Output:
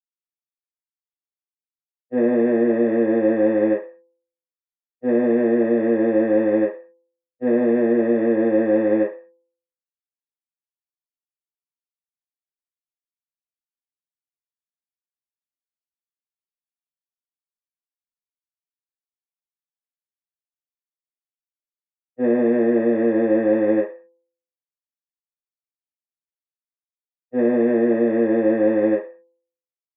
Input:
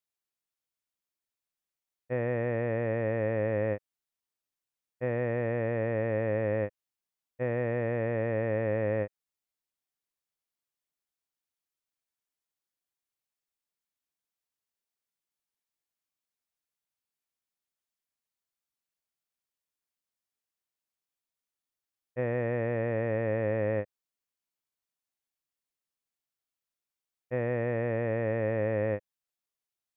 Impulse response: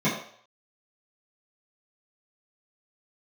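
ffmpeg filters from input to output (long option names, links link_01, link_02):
-filter_complex "[0:a]agate=range=-33dB:threshold=-25dB:ratio=3:detection=peak,bandreject=frequency=169.7:width_type=h:width=4,bandreject=frequency=339.4:width_type=h:width=4,bandreject=frequency=509.1:width_type=h:width=4,bandreject=frequency=678.8:width_type=h:width=4,bandreject=frequency=848.5:width_type=h:width=4,bandreject=frequency=1018.2:width_type=h:width=4[link_01];[1:a]atrim=start_sample=2205,asetrate=70560,aresample=44100[link_02];[link_01][link_02]afir=irnorm=-1:irlink=0,volume=-1.5dB"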